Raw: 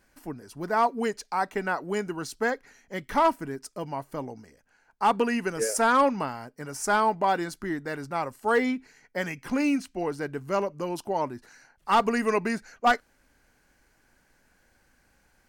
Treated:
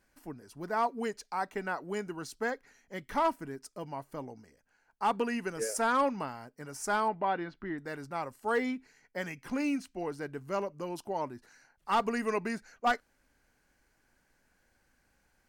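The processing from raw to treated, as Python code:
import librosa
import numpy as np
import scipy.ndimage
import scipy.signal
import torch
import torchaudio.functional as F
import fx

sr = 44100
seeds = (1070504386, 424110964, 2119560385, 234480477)

y = fx.lowpass(x, sr, hz=3400.0, slope=24, at=(7.08, 7.78))
y = y * 10.0 ** (-6.5 / 20.0)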